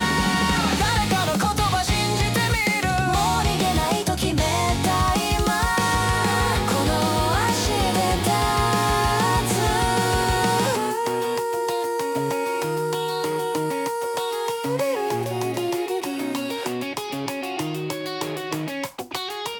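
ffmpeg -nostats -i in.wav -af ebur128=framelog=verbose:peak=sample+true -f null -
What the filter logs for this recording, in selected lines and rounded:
Integrated loudness:
  I:         -22.3 LUFS
  Threshold: -32.3 LUFS
Loudness range:
  LRA:         6.0 LU
  Threshold: -42.2 LUFS
  LRA low:   -26.5 LUFS
  LRA high:  -20.5 LUFS
Sample peak:
  Peak:       -8.8 dBFS
True peak:
  Peak:       -8.8 dBFS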